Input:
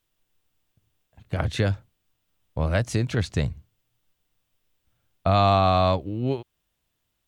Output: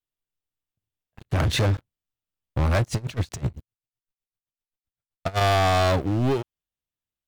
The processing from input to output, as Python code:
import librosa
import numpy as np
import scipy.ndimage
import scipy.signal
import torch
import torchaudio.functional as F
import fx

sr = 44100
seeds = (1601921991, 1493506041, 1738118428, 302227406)

y = fx.leveller(x, sr, passes=5)
y = fx.tremolo_db(y, sr, hz=7.8, depth_db=23, at=(2.82, 5.41))
y = F.gain(torch.from_numpy(y), -8.5).numpy()